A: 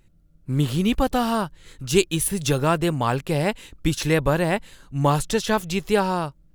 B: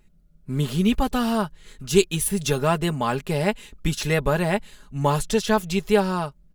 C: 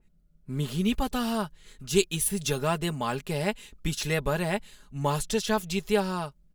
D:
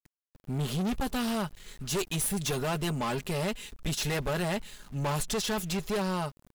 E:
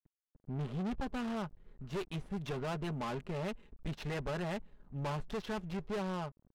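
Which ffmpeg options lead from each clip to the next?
-af "aecho=1:1:4.8:0.59,volume=-2dB"
-af "adynamicequalizer=threshold=0.0178:dfrequency=2400:dqfactor=0.7:tfrequency=2400:tqfactor=0.7:attack=5:release=100:ratio=0.375:range=2:mode=boostabove:tftype=highshelf,volume=-6dB"
-af "aeval=exprs='(tanh(39.8*val(0)+0.2)-tanh(0.2))/39.8':c=same,aeval=exprs='val(0)*gte(abs(val(0)),0.00188)':c=same,volume=5dB"
-af "adynamicsmooth=sensitivity=4.5:basefreq=610,volume=-6.5dB"

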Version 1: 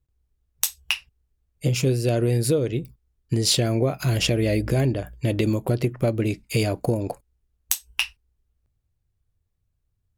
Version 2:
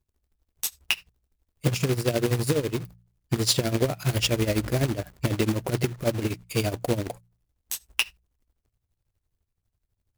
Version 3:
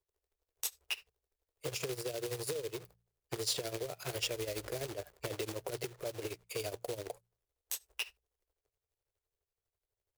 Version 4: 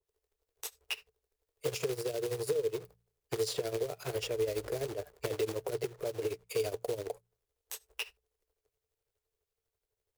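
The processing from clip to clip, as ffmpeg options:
-af "tremolo=f=12:d=0.81,acrusher=bits=2:mode=log:mix=0:aa=0.000001,bandreject=f=58.58:t=h:w=4,bandreject=f=117.16:t=h:w=4,bandreject=f=175.74:t=h:w=4"
-filter_complex "[0:a]lowshelf=f=320:t=q:w=3:g=-10.5,alimiter=limit=-15dB:level=0:latency=1:release=11,acrossover=split=170|3000[a][b][c];[b]acompressor=threshold=-30dB:ratio=6[d];[a][d][c]amix=inputs=3:normalize=0,volume=-7dB"
-filter_complex "[0:a]equalizer=f=440:w=7.1:g=8.5,acrossover=split=2300[a][b];[b]alimiter=level_in=4dB:limit=-24dB:level=0:latency=1:release=275,volume=-4dB[c];[a][c]amix=inputs=2:normalize=0,adynamicequalizer=threshold=0.00224:dfrequency=1500:dqfactor=0.7:tfrequency=1500:tqfactor=0.7:attack=5:release=100:ratio=0.375:range=2:mode=cutabove:tftype=highshelf,volume=2dB"

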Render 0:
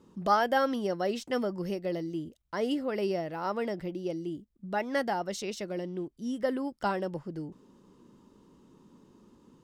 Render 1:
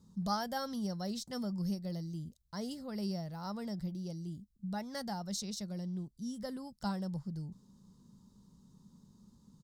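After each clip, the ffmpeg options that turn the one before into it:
-af "firequalizer=gain_entry='entry(200,0);entry(300,-19);entry(830,-12);entry(2700,-20);entry(4000,-1)':delay=0.05:min_phase=1,volume=2dB"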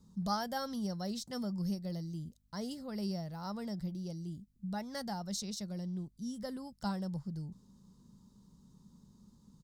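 -af "aeval=exprs='val(0)+0.000251*(sin(2*PI*50*n/s)+sin(2*PI*2*50*n/s)/2+sin(2*PI*3*50*n/s)/3+sin(2*PI*4*50*n/s)/4+sin(2*PI*5*50*n/s)/5)':c=same"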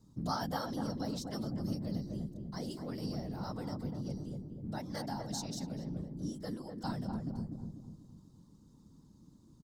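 -filter_complex "[0:a]afftfilt=real='hypot(re,im)*cos(2*PI*random(0))':imag='hypot(re,im)*sin(2*PI*random(1))':win_size=512:overlap=0.75,asplit=2[a][b];[b]adelay=246,lowpass=f=870:p=1,volume=-3dB,asplit=2[c][d];[d]adelay=246,lowpass=f=870:p=1,volume=0.48,asplit=2[e][f];[f]adelay=246,lowpass=f=870:p=1,volume=0.48,asplit=2[g][h];[h]adelay=246,lowpass=f=870:p=1,volume=0.48,asplit=2[i][j];[j]adelay=246,lowpass=f=870:p=1,volume=0.48,asplit=2[k][l];[l]adelay=246,lowpass=f=870:p=1,volume=0.48[m];[a][c][e][g][i][k][m]amix=inputs=7:normalize=0,volume=4.5dB"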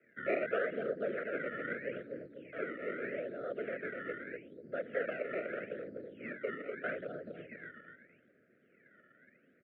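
-af "acrusher=samples=18:mix=1:aa=0.000001:lfo=1:lforange=18:lforate=0.8,asuperstop=centerf=1000:order=8:qfactor=1.3,highpass=f=490:t=q:w=0.5412,highpass=f=490:t=q:w=1.307,lowpass=f=2.1k:t=q:w=0.5176,lowpass=f=2.1k:t=q:w=0.7071,lowpass=f=2.1k:t=q:w=1.932,afreqshift=-66,volume=11.5dB"

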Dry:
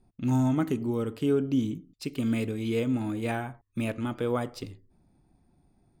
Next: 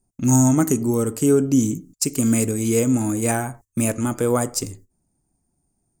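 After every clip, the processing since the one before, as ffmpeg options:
-af "agate=range=-16dB:threshold=-52dB:ratio=16:detection=peak,highshelf=f=5k:t=q:w=3:g=13,volume=8.5dB"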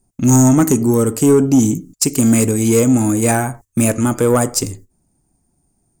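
-af "asoftclip=type=tanh:threshold=-11.5dB,volume=7.5dB"

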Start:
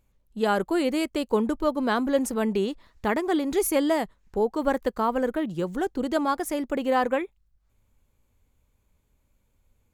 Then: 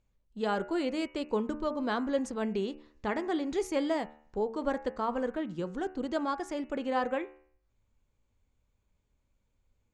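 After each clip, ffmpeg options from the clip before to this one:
-af "lowpass=f=7.3k:w=0.5412,lowpass=f=7.3k:w=1.3066,bandreject=f=74.96:t=h:w=4,bandreject=f=149.92:t=h:w=4,bandreject=f=224.88:t=h:w=4,bandreject=f=299.84:t=h:w=4,bandreject=f=374.8:t=h:w=4,bandreject=f=449.76:t=h:w=4,bandreject=f=524.72:t=h:w=4,bandreject=f=599.68:t=h:w=4,bandreject=f=674.64:t=h:w=4,bandreject=f=749.6:t=h:w=4,bandreject=f=824.56:t=h:w=4,bandreject=f=899.52:t=h:w=4,bandreject=f=974.48:t=h:w=4,bandreject=f=1.04944k:t=h:w=4,bandreject=f=1.1244k:t=h:w=4,bandreject=f=1.19936k:t=h:w=4,bandreject=f=1.27432k:t=h:w=4,bandreject=f=1.34928k:t=h:w=4,bandreject=f=1.42424k:t=h:w=4,bandreject=f=1.4992k:t=h:w=4,bandreject=f=1.57416k:t=h:w=4,bandreject=f=1.64912k:t=h:w=4,bandreject=f=1.72408k:t=h:w=4,bandreject=f=1.79904k:t=h:w=4,bandreject=f=1.874k:t=h:w=4,bandreject=f=1.94896k:t=h:w=4,bandreject=f=2.02392k:t=h:w=4,bandreject=f=2.09888k:t=h:w=4,bandreject=f=2.17384k:t=h:w=4,bandreject=f=2.2488k:t=h:w=4,bandreject=f=2.32376k:t=h:w=4,bandreject=f=2.39872k:t=h:w=4,bandreject=f=2.47368k:t=h:w=4,bandreject=f=2.54864k:t=h:w=4,bandreject=f=2.6236k:t=h:w=4,bandreject=f=2.69856k:t=h:w=4,bandreject=f=2.77352k:t=h:w=4,bandreject=f=2.84848k:t=h:w=4,bandreject=f=2.92344k:t=h:w=4,volume=-6.5dB"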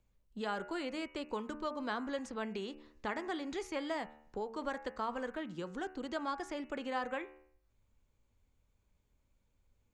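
-filter_complex "[0:a]acrossover=split=170|910|2100|5000[a][b][c][d][e];[a]acompressor=threshold=-56dB:ratio=4[f];[b]acompressor=threshold=-41dB:ratio=4[g];[c]acompressor=threshold=-37dB:ratio=4[h];[d]acompressor=threshold=-50dB:ratio=4[i];[e]acompressor=threshold=-59dB:ratio=4[j];[f][g][h][i][j]amix=inputs=5:normalize=0"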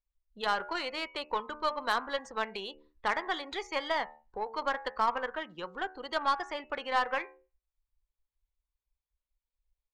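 -af "afftdn=nr=24:nf=-53,equalizer=f=125:t=o:w=1:g=-5,equalizer=f=250:t=o:w=1:g=-8,equalizer=f=500:t=o:w=1:g=3,equalizer=f=1k:t=o:w=1:g=9,equalizer=f=2k:t=o:w=1:g=5,equalizer=f=4k:t=o:w=1:g=12,aeval=exprs='0.168*(cos(1*acos(clip(val(0)/0.168,-1,1)))-cos(1*PI/2))+0.0119*(cos(5*acos(clip(val(0)/0.168,-1,1)))-cos(5*PI/2))+0.00596*(cos(6*acos(clip(val(0)/0.168,-1,1)))-cos(6*PI/2))+0.0119*(cos(7*acos(clip(val(0)/0.168,-1,1)))-cos(7*PI/2))':c=same"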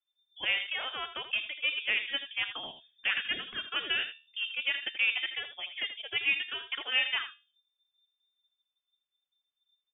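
-af "aecho=1:1:81:0.282,lowpass=f=3.1k:t=q:w=0.5098,lowpass=f=3.1k:t=q:w=0.6013,lowpass=f=3.1k:t=q:w=0.9,lowpass=f=3.1k:t=q:w=2.563,afreqshift=-3600"

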